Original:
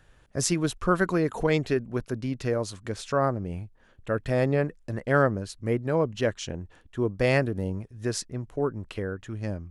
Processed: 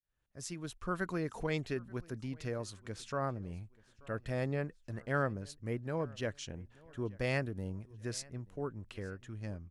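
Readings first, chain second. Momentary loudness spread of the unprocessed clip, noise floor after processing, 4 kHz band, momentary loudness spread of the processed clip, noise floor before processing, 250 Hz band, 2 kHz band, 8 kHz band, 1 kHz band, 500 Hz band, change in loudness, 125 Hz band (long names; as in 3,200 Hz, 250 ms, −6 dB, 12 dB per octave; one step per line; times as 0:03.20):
12 LU, −67 dBFS, −10.0 dB, 11 LU, −58 dBFS, −11.5 dB, −9.5 dB, −12.5 dB, −11.0 dB, −12.5 dB, −11.0 dB, −9.5 dB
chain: fade in at the beginning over 1.19 s
parametric band 480 Hz −4 dB 2.2 octaves
on a send: repeating echo 883 ms, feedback 37%, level −24 dB
on the sum: level −8.5 dB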